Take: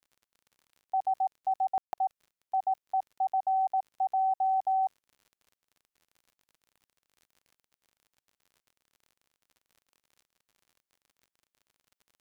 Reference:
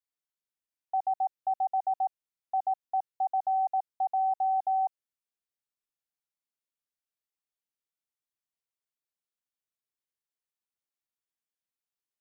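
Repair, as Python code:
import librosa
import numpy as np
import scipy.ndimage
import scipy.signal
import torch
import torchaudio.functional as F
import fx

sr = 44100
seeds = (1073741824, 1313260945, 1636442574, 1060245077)

y = fx.fix_declick_ar(x, sr, threshold=6.5)
y = fx.fix_ambience(y, sr, seeds[0], print_start_s=4.78, print_end_s=5.28, start_s=1.78, end_s=1.93)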